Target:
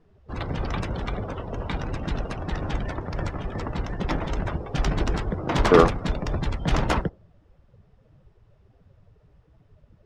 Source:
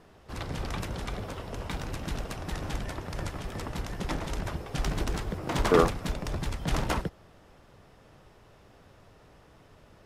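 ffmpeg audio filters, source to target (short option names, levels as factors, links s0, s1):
-af "afftdn=nr=18:nf=-45,adynamicsmooth=sensitivity=4.5:basefreq=7000,volume=2"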